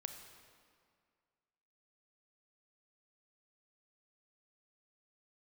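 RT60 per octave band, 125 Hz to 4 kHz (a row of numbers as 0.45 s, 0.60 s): 2.0 s, 2.1 s, 2.1 s, 2.1 s, 1.8 s, 1.5 s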